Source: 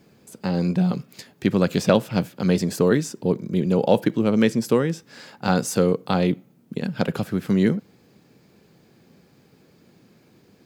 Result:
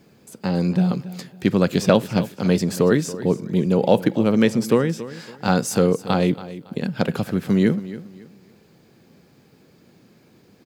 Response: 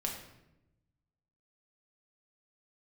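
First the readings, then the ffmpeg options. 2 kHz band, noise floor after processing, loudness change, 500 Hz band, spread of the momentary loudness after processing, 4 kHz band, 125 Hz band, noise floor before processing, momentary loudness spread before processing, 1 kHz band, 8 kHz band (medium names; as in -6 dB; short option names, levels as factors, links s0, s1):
+1.5 dB, -55 dBFS, +1.5 dB, +1.5 dB, 11 LU, +1.5 dB, +1.5 dB, -57 dBFS, 10 LU, +1.5 dB, +1.5 dB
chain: -af "aecho=1:1:279|558|837:0.168|0.0487|0.0141,volume=1.19"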